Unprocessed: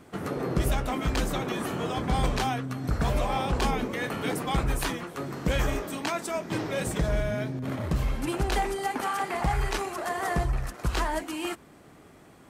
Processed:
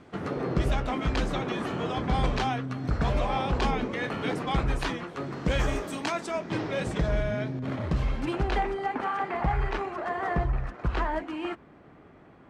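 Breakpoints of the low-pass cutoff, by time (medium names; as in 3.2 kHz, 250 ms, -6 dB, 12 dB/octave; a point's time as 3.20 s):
5.36 s 4.7 kHz
5.85 s 10 kHz
6.40 s 4.7 kHz
8.15 s 4.7 kHz
8.77 s 2.3 kHz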